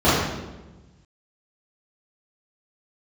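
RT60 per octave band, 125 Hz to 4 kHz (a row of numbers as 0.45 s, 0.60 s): 1.8 s, 1.5 s, 1.3 s, 1.0 s, 0.90 s, 0.85 s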